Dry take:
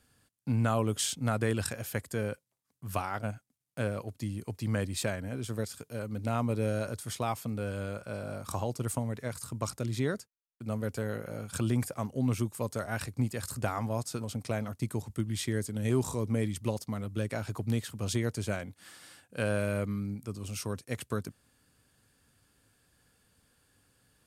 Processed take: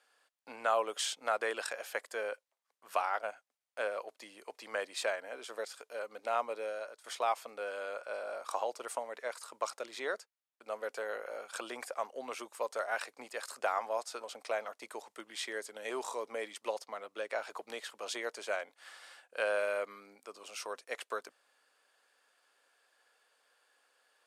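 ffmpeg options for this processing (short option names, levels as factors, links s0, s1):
-filter_complex "[0:a]asettb=1/sr,asplit=3[s0][s1][s2];[s0]atrim=end=16.824[s3];[s1]atrim=start=16.82:end=17.42,asetpts=PTS-STARTPTS,afade=t=in:d=0.004:c=qsin,afade=t=out:st=0.596:d=0.004:c=qsin,highshelf=f=7400:g=-6[s4];[s2]atrim=start=17.416[s5];[s3][s4]acrossfade=d=0.004:c1=hsin:c2=qsin[s6];[s6][s5]acrossfade=d=0.004:c1=qsin:c2=hsin,asplit=2[s7][s8];[s7]atrim=end=7.04,asetpts=PTS-STARTPTS,afade=t=out:st=6.37:d=0.67:silence=0.199526[s9];[s8]atrim=start=7.04,asetpts=PTS-STARTPTS,afade=t=in:d=0.004:c=hsin:silence=0.199526[s10];[s9][s10]concat=n=2:v=0:a=1,highpass=f=530:w=0.5412,highpass=f=530:w=1.3066,aemphasis=mode=reproduction:type=50fm,volume=1.33"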